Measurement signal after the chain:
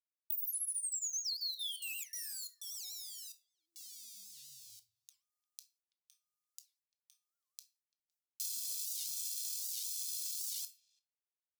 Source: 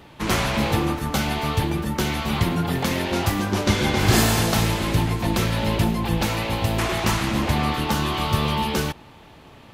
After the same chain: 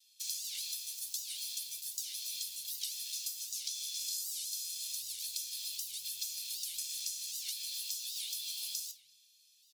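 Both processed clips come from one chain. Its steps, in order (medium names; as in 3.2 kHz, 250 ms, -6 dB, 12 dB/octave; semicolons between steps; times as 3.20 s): comb 1.2 ms, depth 94%; in parallel at -3.5 dB: small samples zeroed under -25 dBFS; on the sum: simulated room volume 320 m³, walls furnished, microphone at 0.81 m; gate with hold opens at -40 dBFS; inverse Chebyshev high-pass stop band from 1.4 kHz, stop band 60 dB; speakerphone echo 340 ms, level -27 dB; compression 16:1, threshold -31 dBFS; warped record 78 rpm, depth 250 cents; trim -4.5 dB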